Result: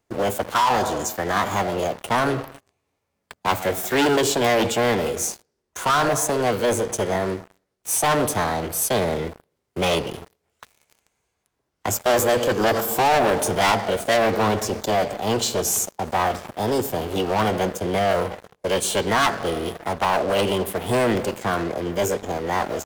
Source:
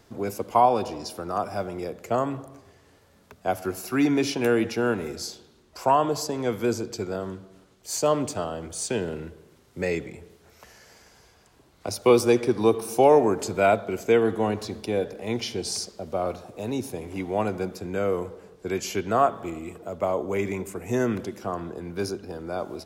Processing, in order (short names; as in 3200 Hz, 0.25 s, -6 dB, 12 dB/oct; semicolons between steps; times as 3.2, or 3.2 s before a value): sample leveller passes 5; formant shift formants +5 st; gain -8.5 dB